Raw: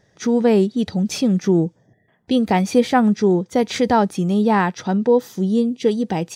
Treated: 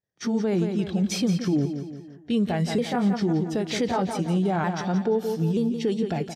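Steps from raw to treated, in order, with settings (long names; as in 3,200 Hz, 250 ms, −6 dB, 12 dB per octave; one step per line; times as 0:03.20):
pitch shifter swept by a sawtooth −3 semitones, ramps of 928 ms
on a send: repeating echo 172 ms, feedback 47%, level −10.5 dB
on the sum: downward expander −43 dBFS
brickwall limiter −12.5 dBFS, peak gain reduction 8.5 dB
level −3 dB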